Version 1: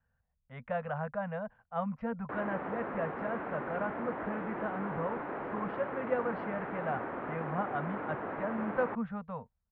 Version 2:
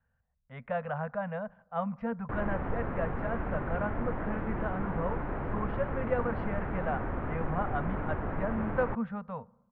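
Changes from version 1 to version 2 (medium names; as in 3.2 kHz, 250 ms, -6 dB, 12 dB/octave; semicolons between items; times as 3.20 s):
background: remove high-pass 290 Hz 12 dB/octave; reverb: on, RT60 1.3 s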